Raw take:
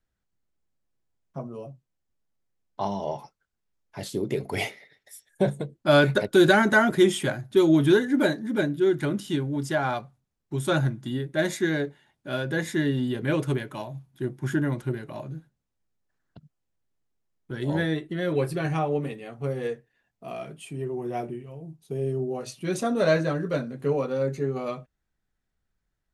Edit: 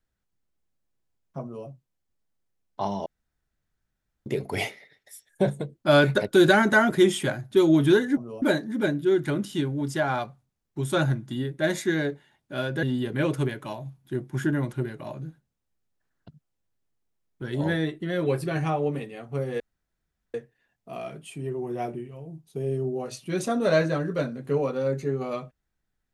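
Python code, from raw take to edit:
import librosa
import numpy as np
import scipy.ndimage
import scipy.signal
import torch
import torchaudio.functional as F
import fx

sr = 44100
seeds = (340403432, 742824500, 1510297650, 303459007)

y = fx.edit(x, sr, fx.duplicate(start_s=1.42, length_s=0.25, to_s=8.17),
    fx.room_tone_fill(start_s=3.06, length_s=1.2),
    fx.cut(start_s=12.58, length_s=0.34),
    fx.insert_room_tone(at_s=19.69, length_s=0.74), tone=tone)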